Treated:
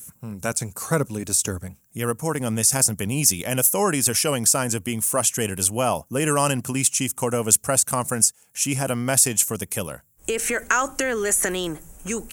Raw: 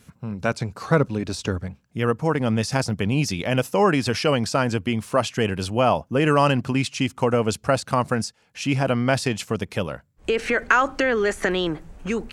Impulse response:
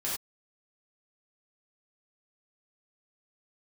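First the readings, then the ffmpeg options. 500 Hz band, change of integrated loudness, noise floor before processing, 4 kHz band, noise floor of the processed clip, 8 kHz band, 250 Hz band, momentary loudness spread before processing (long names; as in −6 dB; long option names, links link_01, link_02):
−3.5 dB, +1.5 dB, −61 dBFS, 0.0 dB, −59 dBFS, +17.5 dB, −3.5 dB, 9 LU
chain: -af "highshelf=frequency=6500:gain=9,aexciter=amount=11.6:drive=1.1:freq=6400,volume=-3.5dB"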